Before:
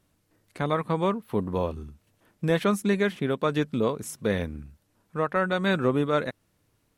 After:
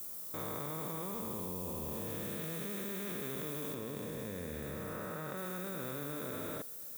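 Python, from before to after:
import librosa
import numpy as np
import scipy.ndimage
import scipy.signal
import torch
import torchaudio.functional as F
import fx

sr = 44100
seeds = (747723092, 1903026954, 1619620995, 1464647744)

y = fx.spec_blur(x, sr, span_ms=727.0)
y = fx.low_shelf(y, sr, hz=66.0, db=-5.0)
y = fx.echo_feedback(y, sr, ms=77, feedback_pct=58, wet_db=-10.0)
y = fx.level_steps(y, sr, step_db=21)
y = fx.dmg_noise_colour(y, sr, seeds[0], colour='violet', level_db=-55.0)
y = fx.high_shelf(y, sr, hz=4000.0, db=fx.steps((0.0, 11.0), (3.73, 4.0), (5.36, 9.0)))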